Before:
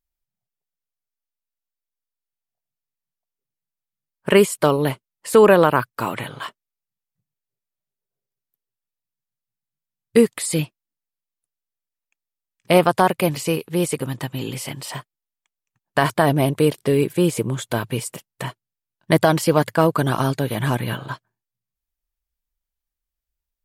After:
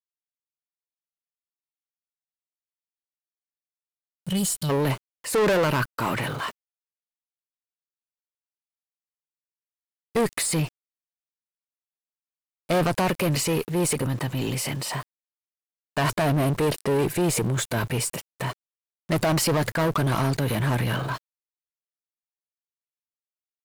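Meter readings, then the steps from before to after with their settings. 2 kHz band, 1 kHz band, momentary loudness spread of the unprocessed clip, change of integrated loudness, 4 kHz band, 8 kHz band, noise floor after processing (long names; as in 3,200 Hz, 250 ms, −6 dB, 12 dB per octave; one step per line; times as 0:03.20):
−3.5 dB, −6.0 dB, 17 LU, −5.5 dB, −1.5 dB, +1.5 dB, below −85 dBFS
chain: gain on a spectral selection 0:03.78–0:04.70, 210–2,900 Hz −22 dB
high-shelf EQ 5,200 Hz −2.5 dB
notch filter 3,300 Hz, Q 8.7
transient designer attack −2 dB, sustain +6 dB
tube saturation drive 17 dB, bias 0.25
centre clipping without the shift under −48 dBFS
power curve on the samples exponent 0.7
level −1.5 dB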